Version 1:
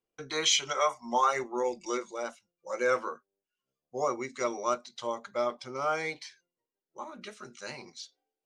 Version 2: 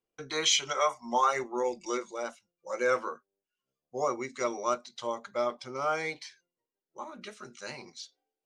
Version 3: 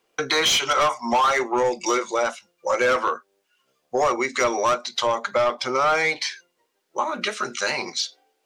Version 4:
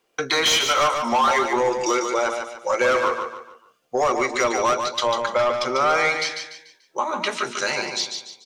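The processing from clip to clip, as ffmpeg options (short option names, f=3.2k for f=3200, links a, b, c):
-af anull
-filter_complex "[0:a]asplit=2[a][b];[b]highpass=f=720:p=1,volume=19dB,asoftclip=type=tanh:threshold=-12dB[c];[a][c]amix=inputs=2:normalize=0,lowpass=f=4.3k:p=1,volume=-6dB,asplit=2[d][e];[e]volume=18.5dB,asoftclip=hard,volume=-18.5dB,volume=-3.5dB[f];[d][f]amix=inputs=2:normalize=0,acompressor=threshold=-28dB:ratio=2.5,volume=6dB"
-af "aecho=1:1:146|292|438|584:0.501|0.18|0.065|0.0234"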